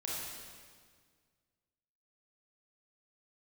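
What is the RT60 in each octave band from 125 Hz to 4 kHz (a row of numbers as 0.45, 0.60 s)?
2.3, 2.1, 1.8, 1.7, 1.6, 1.6 s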